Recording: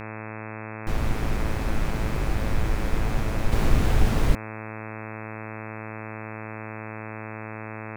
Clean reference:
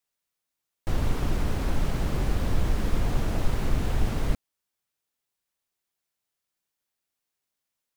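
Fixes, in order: de-hum 109.1 Hz, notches 24; gain correction -5 dB, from 3.52

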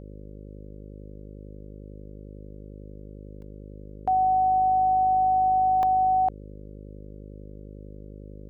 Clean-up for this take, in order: de-hum 51.1 Hz, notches 11; interpolate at 3.42/5.83, 1.6 ms

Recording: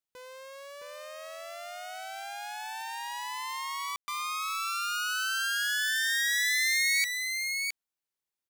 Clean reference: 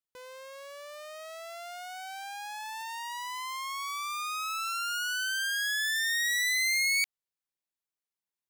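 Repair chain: room tone fill 3.96–4.08; inverse comb 0.664 s -5 dB

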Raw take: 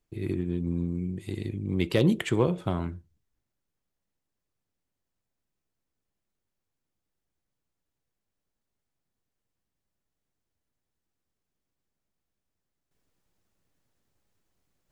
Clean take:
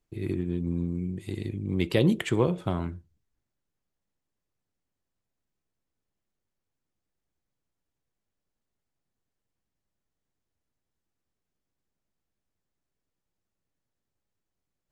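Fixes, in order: clip repair -12 dBFS; gain 0 dB, from 12.91 s -9 dB

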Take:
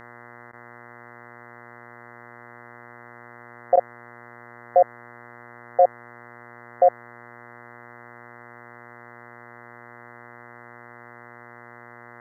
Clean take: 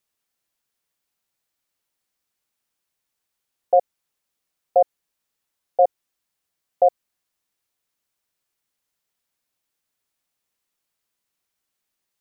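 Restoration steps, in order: de-hum 119.6 Hz, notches 17; interpolate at 0.52/3.76, 11 ms

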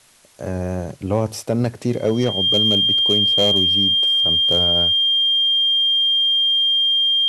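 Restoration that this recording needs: clip repair -9.5 dBFS; notch 3200 Hz, Q 30; expander -26 dBFS, range -21 dB

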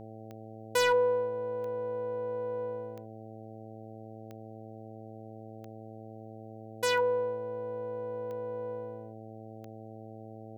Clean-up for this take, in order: clip repair -18.5 dBFS; de-click; de-hum 110.3 Hz, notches 7

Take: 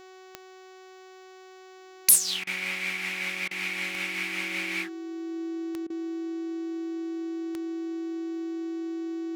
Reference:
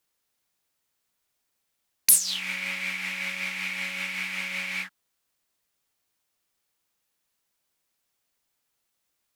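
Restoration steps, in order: de-click; de-hum 374.3 Hz, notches 20; notch 330 Hz, Q 30; interpolate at 2.44/3.48/5.87, 29 ms

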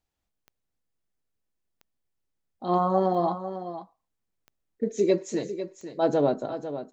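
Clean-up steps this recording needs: de-click; inverse comb 0.499 s -11 dB

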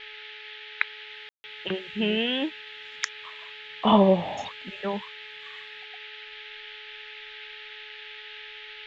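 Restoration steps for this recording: de-hum 426.7 Hz, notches 4; room tone fill 1.29–1.44; noise print and reduce 30 dB

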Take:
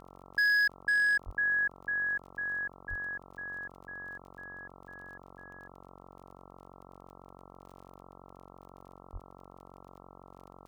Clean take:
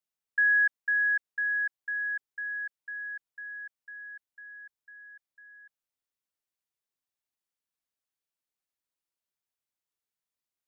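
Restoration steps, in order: clip repair -24 dBFS; de-click; de-hum 46 Hz, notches 29; 1.25–1.37 HPF 140 Hz 24 dB/oct; 2.89–3.01 HPF 140 Hz 24 dB/oct; 9.12–9.24 HPF 140 Hz 24 dB/oct

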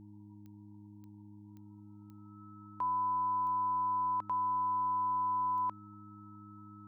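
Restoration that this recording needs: de-click; de-hum 103.4 Hz, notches 3; notch 1300 Hz, Q 30; noise print and reduce 29 dB

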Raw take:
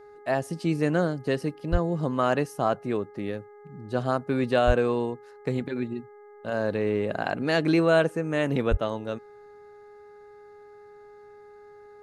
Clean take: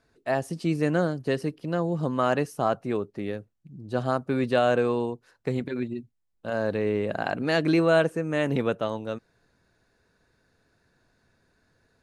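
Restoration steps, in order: de-hum 414 Hz, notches 5; 1.71–1.83 HPF 140 Hz 24 dB/oct; 4.66–4.78 HPF 140 Hz 24 dB/oct; 8.7–8.82 HPF 140 Hz 24 dB/oct

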